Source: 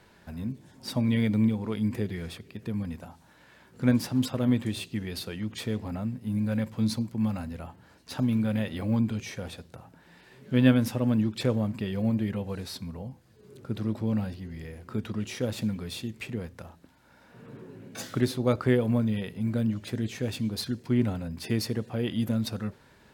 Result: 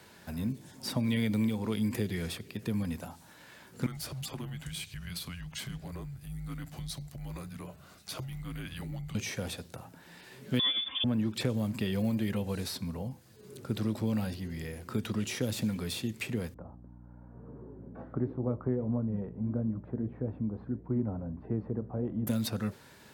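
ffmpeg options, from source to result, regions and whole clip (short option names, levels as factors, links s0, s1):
-filter_complex "[0:a]asettb=1/sr,asplit=3[s0][s1][s2];[s0]atrim=end=3.864[s3];[s1]atrim=start=3.86:end=9.15,asetpts=PTS-STARTPTS,afade=t=in:d=0.004:c=qsin,afade=t=out:st=5.286:d=0.004:c=qsin,afreqshift=-260,acompressor=threshold=0.00794:ratio=2:attack=3.2:release=140:knee=1:detection=peak[s4];[s2]atrim=start=9.146[s5];[s3][s4]acrossfade=d=0.004:c1=hsin:c2=qsin[s6];[s6][s5]acrossfade=d=0.004:c1=qsin:c2=hsin,asettb=1/sr,asplit=3[s7][s8][s9];[s7]atrim=end=10.594[s10];[s8]atrim=start=10.59:end=11.04,asetpts=PTS-STARTPTS,afade=t=in:d=0.004:c=qsin,afade=t=out:st=0.446:d=0.004:c=qsin,lowpass=f=3100:t=q:w=0.5098,lowpass=f=3100:t=q:w=0.6013,lowpass=f=3100:t=q:w=0.9,lowpass=f=3100:t=q:w=2.563,afreqshift=-3700,aecho=1:1:3.8:0.99,atrim=end_sample=19845[s11];[s9]atrim=start=11.036[s12];[s10][s11]acrossfade=d=0.004:c1=hsin:c2=qsin[s13];[s13][s12]acrossfade=d=0.004:c1=qsin:c2=hsin,asettb=1/sr,asplit=3[s14][s15][s16];[s14]atrim=end=16.544[s17];[s15]atrim=start=16.54:end=22.27,asetpts=PTS-STARTPTS,afade=t=in:d=0.004:c=qsin,afade=t=out:st=5.726:d=0.004:c=qsin,lowpass=f=1100:w=0.5412,lowpass=f=1100:w=1.3066,flanger=delay=6.2:depth=6.9:regen=-76:speed=1.6:shape=sinusoidal,aeval=exprs='val(0)+0.00355*(sin(2*PI*60*n/s)+sin(2*PI*2*60*n/s)/2+sin(2*PI*3*60*n/s)/3+sin(2*PI*4*60*n/s)/4+sin(2*PI*5*60*n/s)/5)':c=same[s18];[s16]atrim=start=22.266[s19];[s17][s18]acrossfade=d=0.004:c1=hsin:c2=qsin[s20];[s20][s19]acrossfade=d=0.004:c1=qsin:c2=hsin,highpass=72,acrossover=split=350|2600[s21][s22][s23];[s21]acompressor=threshold=0.0316:ratio=4[s24];[s22]acompressor=threshold=0.0112:ratio=4[s25];[s23]acompressor=threshold=0.00562:ratio=4[s26];[s24][s25][s26]amix=inputs=3:normalize=0,highshelf=f=4600:g=9,volume=1.19"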